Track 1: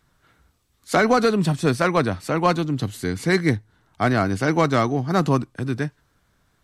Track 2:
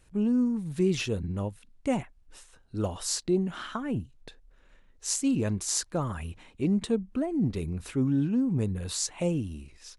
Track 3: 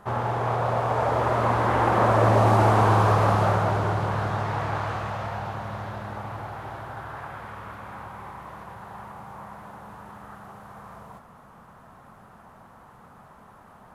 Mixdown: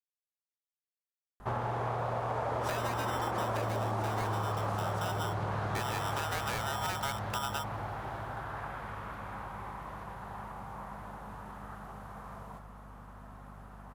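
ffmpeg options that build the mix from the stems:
-filter_complex "[0:a]highshelf=f=7.1k:g=-10,acompressor=threshold=-27dB:ratio=4,aeval=exprs='val(0)*sgn(sin(2*PI*1100*n/s))':c=same,adelay=1750,volume=-3.5dB[a];[2:a]aeval=exprs='val(0)+0.00447*(sin(2*PI*50*n/s)+sin(2*PI*2*50*n/s)/2+sin(2*PI*3*50*n/s)/3+sin(2*PI*4*50*n/s)/4+sin(2*PI*5*50*n/s)/5)':c=same,adelay=1400,volume=-3dB[b];[a][b]amix=inputs=2:normalize=0,acompressor=threshold=-30dB:ratio=8"

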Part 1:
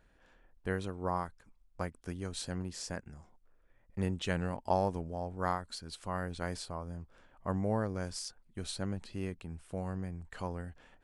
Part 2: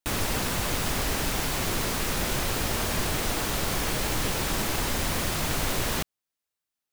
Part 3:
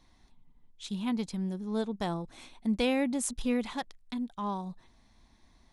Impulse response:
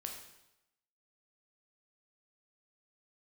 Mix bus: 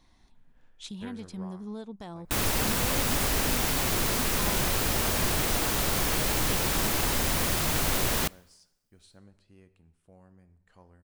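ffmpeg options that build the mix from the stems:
-filter_complex "[0:a]adelay=350,volume=-10dB,afade=t=out:st=1.23:d=0.32:silence=0.298538,asplit=2[a][b];[b]volume=-4.5dB[c];[1:a]highshelf=f=9.9k:g=5,adelay=2250,volume=-0.5dB,asplit=2[d][e];[e]volume=-20dB[f];[2:a]acompressor=threshold=-34dB:ratio=2.5,volume=0.5dB[g];[a][g]amix=inputs=2:normalize=0,alimiter=level_in=5.5dB:limit=-24dB:level=0:latency=1:release=355,volume=-5.5dB,volume=0dB[h];[3:a]atrim=start_sample=2205[i];[c][f]amix=inputs=2:normalize=0[j];[j][i]afir=irnorm=-1:irlink=0[k];[d][h][k]amix=inputs=3:normalize=0"

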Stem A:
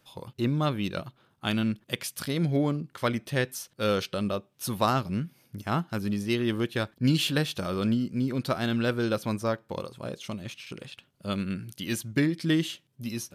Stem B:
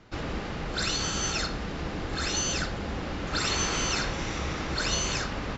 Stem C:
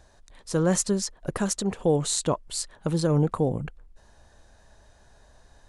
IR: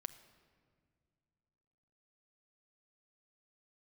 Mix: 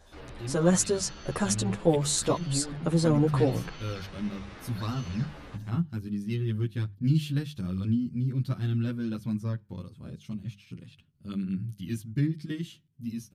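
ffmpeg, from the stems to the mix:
-filter_complex "[0:a]asubboost=boost=10.5:cutoff=180,volume=-9.5dB[a];[1:a]lowpass=f=4.9k:w=0.5412,lowpass=f=4.9k:w=1.3066,alimiter=level_in=2dB:limit=-24dB:level=0:latency=1:release=24,volume=-2dB,volume=-8dB[b];[2:a]volume=2.5dB[c];[a][b][c]amix=inputs=3:normalize=0,bandreject=f=50:t=h:w=6,bandreject=f=100:t=h:w=6,bandreject=f=150:t=h:w=6,bandreject=f=200:t=h:w=6,asplit=2[d][e];[e]adelay=9.9,afreqshift=-0.99[f];[d][f]amix=inputs=2:normalize=1"

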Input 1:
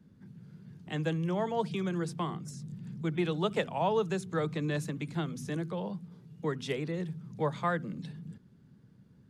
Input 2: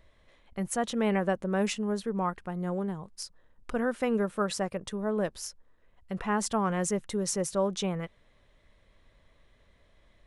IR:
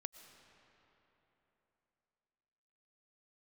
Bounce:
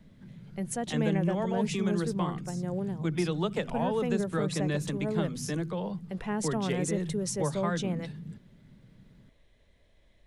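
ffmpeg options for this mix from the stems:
-filter_complex "[0:a]volume=2.5dB[a];[1:a]equalizer=f=1.2k:w=1.9:g=-9.5,volume=-1dB[b];[a][b]amix=inputs=2:normalize=0,acrossover=split=300[c][d];[d]acompressor=threshold=-31dB:ratio=2.5[e];[c][e]amix=inputs=2:normalize=0"

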